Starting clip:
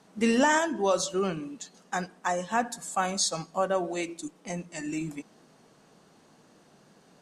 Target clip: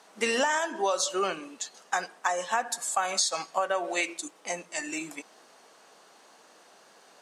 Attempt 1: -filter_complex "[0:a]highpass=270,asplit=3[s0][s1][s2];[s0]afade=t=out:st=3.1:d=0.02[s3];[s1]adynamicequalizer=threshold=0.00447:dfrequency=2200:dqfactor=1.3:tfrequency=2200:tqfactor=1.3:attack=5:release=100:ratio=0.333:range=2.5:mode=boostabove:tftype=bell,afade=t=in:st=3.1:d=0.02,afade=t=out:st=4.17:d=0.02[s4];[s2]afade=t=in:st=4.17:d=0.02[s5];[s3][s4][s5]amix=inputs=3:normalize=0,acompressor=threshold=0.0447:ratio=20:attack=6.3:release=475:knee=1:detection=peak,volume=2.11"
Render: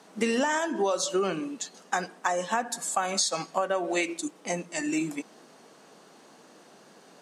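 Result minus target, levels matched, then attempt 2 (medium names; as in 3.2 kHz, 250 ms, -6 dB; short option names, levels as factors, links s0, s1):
250 Hz band +7.5 dB
-filter_complex "[0:a]highpass=590,asplit=3[s0][s1][s2];[s0]afade=t=out:st=3.1:d=0.02[s3];[s1]adynamicequalizer=threshold=0.00447:dfrequency=2200:dqfactor=1.3:tfrequency=2200:tqfactor=1.3:attack=5:release=100:ratio=0.333:range=2.5:mode=boostabove:tftype=bell,afade=t=in:st=3.1:d=0.02,afade=t=out:st=4.17:d=0.02[s4];[s2]afade=t=in:st=4.17:d=0.02[s5];[s3][s4][s5]amix=inputs=3:normalize=0,acompressor=threshold=0.0447:ratio=20:attack=6.3:release=475:knee=1:detection=peak,volume=2.11"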